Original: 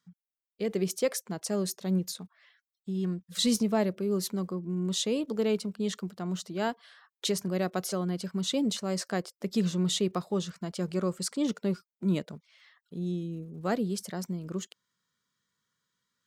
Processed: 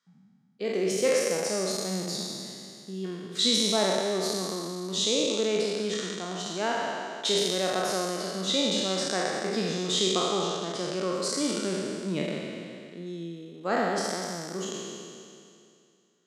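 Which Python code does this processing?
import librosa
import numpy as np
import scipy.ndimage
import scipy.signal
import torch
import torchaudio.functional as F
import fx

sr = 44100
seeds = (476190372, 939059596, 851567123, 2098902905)

y = fx.spec_trails(x, sr, decay_s=2.41)
y = fx.bandpass_edges(y, sr, low_hz=270.0, high_hz=7200.0)
y = fx.room_flutter(y, sr, wall_m=8.1, rt60_s=0.25)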